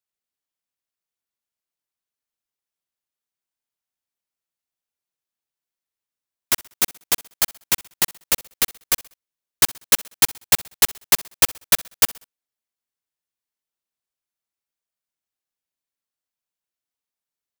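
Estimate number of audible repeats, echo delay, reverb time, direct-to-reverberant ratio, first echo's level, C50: 2, 64 ms, no reverb, no reverb, -22.0 dB, no reverb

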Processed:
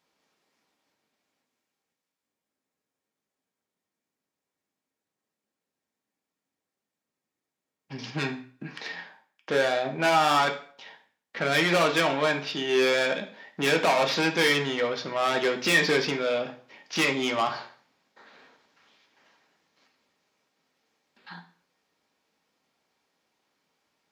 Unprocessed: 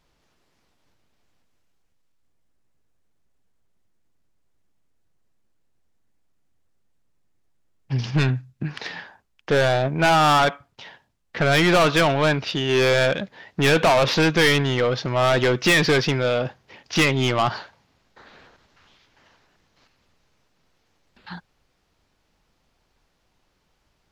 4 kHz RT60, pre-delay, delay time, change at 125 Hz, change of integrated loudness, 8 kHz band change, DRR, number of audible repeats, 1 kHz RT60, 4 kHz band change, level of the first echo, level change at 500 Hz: 0.40 s, 3 ms, no echo, -14.5 dB, -5.0 dB, -4.5 dB, 2.0 dB, no echo, 0.45 s, -4.5 dB, no echo, -5.5 dB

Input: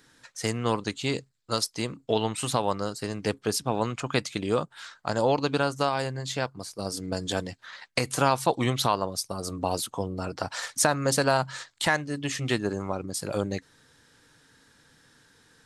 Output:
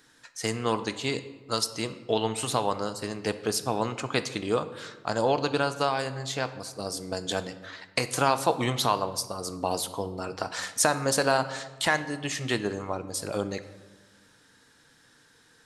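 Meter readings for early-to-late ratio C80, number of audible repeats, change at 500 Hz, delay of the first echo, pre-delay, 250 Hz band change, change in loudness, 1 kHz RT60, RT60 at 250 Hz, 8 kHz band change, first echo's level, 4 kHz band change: 15.0 dB, no echo, -0.5 dB, no echo, 3 ms, -2.0 dB, -0.5 dB, 1.2 s, 1.7 s, 0.0 dB, no echo, +0.5 dB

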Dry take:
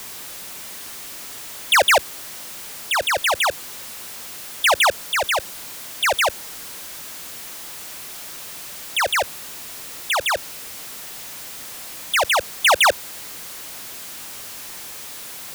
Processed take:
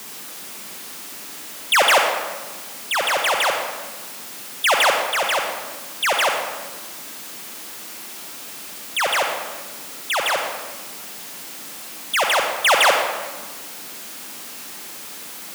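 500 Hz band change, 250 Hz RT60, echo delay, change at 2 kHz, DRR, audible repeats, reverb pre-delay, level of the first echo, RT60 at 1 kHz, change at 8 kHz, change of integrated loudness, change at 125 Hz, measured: +1.5 dB, 1.3 s, no echo, +0.5 dB, 2.0 dB, no echo, 37 ms, no echo, 1.4 s, -0.5 dB, +2.5 dB, no reading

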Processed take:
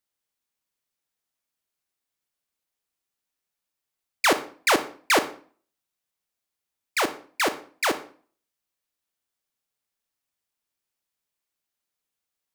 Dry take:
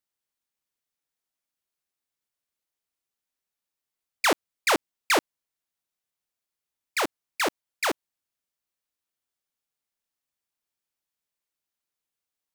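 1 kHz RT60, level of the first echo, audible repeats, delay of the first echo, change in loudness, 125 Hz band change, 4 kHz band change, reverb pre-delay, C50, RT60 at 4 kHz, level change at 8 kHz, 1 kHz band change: 0.45 s, no echo, no echo, no echo, +2.0 dB, +2.5 dB, +2.0 dB, 30 ms, 13.5 dB, 0.35 s, +2.0 dB, +2.5 dB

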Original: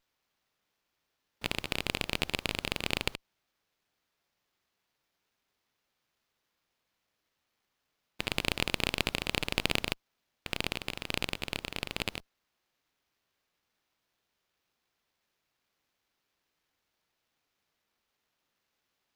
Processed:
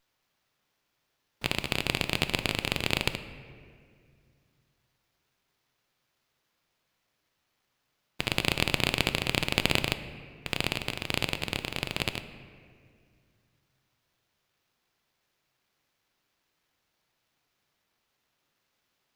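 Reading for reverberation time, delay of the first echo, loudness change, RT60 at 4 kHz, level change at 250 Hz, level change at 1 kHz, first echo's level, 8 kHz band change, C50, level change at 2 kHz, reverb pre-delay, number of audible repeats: 2.1 s, no echo, +4.0 dB, 1.3 s, +4.5 dB, +4.0 dB, no echo, +3.5 dB, 12.0 dB, +4.0 dB, 3 ms, no echo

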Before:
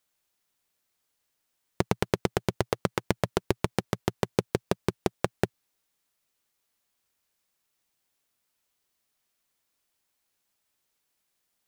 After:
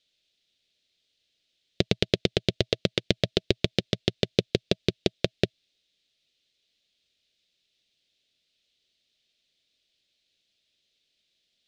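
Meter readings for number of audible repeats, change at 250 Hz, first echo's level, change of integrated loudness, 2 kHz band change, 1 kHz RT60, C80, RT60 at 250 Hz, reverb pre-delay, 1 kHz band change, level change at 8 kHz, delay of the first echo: no echo, +2.0 dB, no echo, +3.0 dB, +2.0 dB, no reverb, no reverb, no reverb, no reverb, -9.5 dB, -1.5 dB, no echo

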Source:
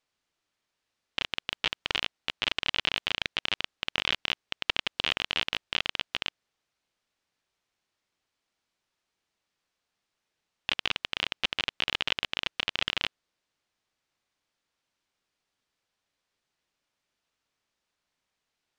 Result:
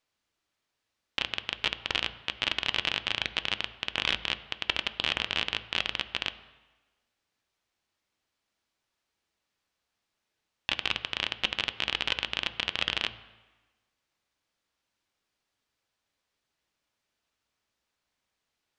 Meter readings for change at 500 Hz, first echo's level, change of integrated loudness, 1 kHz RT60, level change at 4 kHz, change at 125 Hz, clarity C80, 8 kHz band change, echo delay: +0.5 dB, no echo, 0.0 dB, 1.2 s, 0.0 dB, +1.5 dB, 16.5 dB, 0.0 dB, no echo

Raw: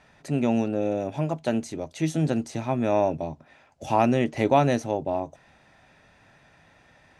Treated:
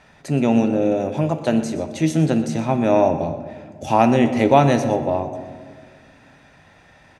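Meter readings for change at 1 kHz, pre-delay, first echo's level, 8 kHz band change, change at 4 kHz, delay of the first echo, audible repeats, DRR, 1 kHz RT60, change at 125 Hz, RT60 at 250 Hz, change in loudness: +6.0 dB, 13 ms, -15.5 dB, +6.0 dB, +6.0 dB, 121 ms, 1, 8.0 dB, 1.5 s, +6.5 dB, 2.4 s, +6.5 dB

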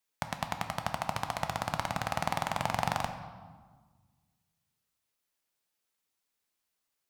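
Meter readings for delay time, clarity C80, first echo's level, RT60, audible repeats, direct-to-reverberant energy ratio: no echo, 10.0 dB, no echo, 1.5 s, no echo, 6.0 dB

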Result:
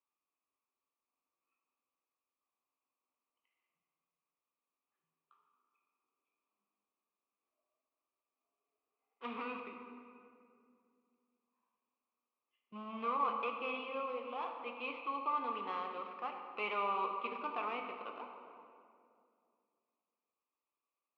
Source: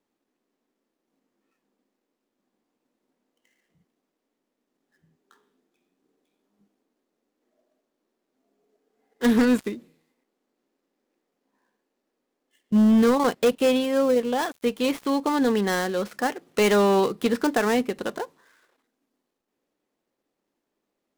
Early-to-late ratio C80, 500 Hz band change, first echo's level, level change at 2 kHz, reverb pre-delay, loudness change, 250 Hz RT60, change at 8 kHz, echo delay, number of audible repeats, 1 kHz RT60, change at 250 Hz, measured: 5.5 dB, -21.5 dB, no echo, -14.0 dB, 15 ms, -17.0 dB, 3.0 s, under -40 dB, no echo, no echo, 2.2 s, -28.5 dB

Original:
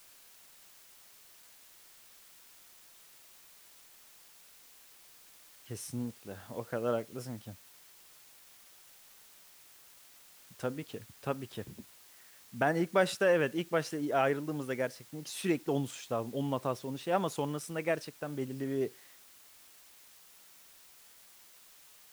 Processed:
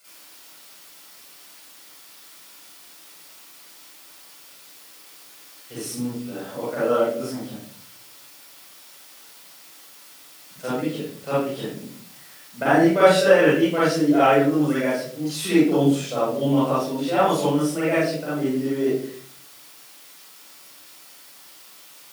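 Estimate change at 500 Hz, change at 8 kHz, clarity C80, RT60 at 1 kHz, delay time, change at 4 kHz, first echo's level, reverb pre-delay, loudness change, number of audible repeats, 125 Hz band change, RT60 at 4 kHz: +12.5 dB, +10.5 dB, 3.5 dB, 0.40 s, no echo, +12.5 dB, no echo, 39 ms, +13.0 dB, no echo, +10.5 dB, 0.40 s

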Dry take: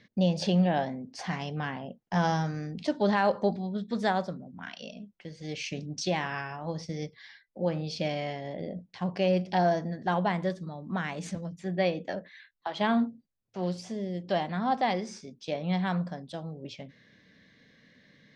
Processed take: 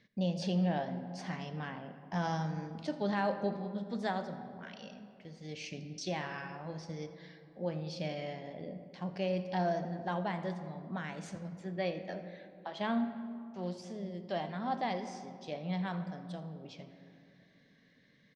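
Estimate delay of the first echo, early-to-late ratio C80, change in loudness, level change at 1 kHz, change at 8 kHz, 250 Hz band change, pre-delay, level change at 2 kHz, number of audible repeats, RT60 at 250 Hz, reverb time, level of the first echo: 83 ms, 10.5 dB, -7.0 dB, -7.5 dB, -7.5 dB, -6.5 dB, 4 ms, -7.5 dB, 1, 3.3 s, 2.8 s, -19.0 dB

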